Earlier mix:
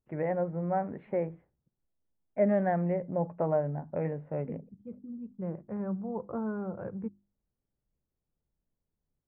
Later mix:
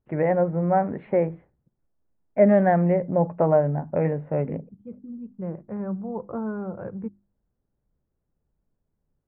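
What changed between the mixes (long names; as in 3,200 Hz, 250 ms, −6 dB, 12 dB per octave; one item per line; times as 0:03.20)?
first voice +9.0 dB
second voice +4.0 dB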